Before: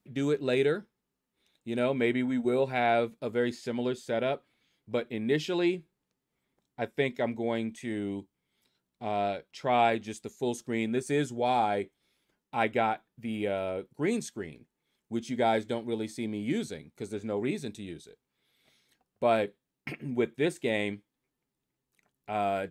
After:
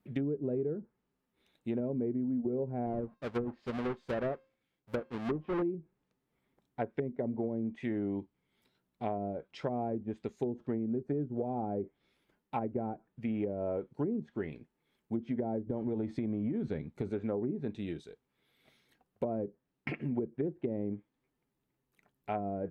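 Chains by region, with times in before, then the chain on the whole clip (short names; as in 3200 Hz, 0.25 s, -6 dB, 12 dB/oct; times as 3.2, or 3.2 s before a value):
2.86–5.62 half-waves squared off + resonator 530 Hz, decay 0.41 s, mix 50% + upward expander, over -43 dBFS
15.67–17.1 low shelf 340 Hz +7.5 dB + compressor 12:1, threshold -29 dBFS
whole clip: treble ducked by the level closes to 370 Hz, closed at -26 dBFS; bell 7000 Hz -10.5 dB 2 oct; compressor, threshold -33 dBFS; gain +3 dB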